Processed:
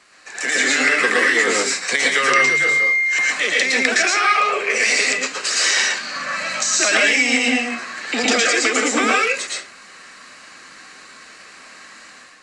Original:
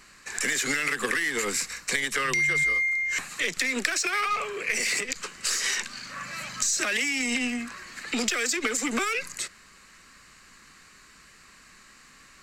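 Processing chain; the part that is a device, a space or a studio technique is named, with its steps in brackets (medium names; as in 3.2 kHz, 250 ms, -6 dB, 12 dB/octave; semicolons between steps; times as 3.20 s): filmed off a television (band-pass 270–6800 Hz; peaking EQ 660 Hz +5.5 dB 0.52 oct; reverberation RT60 0.35 s, pre-delay 107 ms, DRR -2.5 dB; white noise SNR 34 dB; level rider gain up to 8 dB; AAC 64 kbps 22.05 kHz)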